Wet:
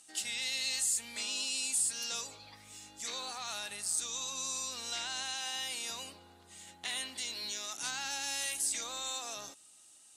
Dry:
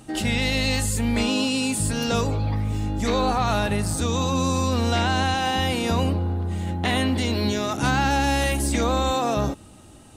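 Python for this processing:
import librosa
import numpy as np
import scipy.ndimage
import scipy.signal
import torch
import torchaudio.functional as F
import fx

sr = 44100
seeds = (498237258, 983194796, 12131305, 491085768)

y = fx.bandpass_q(x, sr, hz=7500.0, q=1.1)
y = F.gain(torch.from_numpy(y), -1.0).numpy()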